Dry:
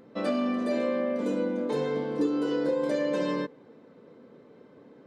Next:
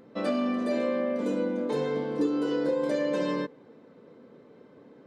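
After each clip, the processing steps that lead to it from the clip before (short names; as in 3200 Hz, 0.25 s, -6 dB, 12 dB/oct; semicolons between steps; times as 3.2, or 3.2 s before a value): nothing audible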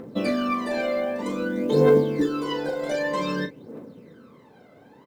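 phaser 0.53 Hz, delay 1.5 ms, feedback 75%; companded quantiser 8-bit; doubler 39 ms -10 dB; gain +3 dB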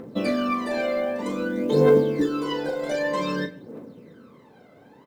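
reverb RT60 0.55 s, pre-delay 70 ms, DRR 19.5 dB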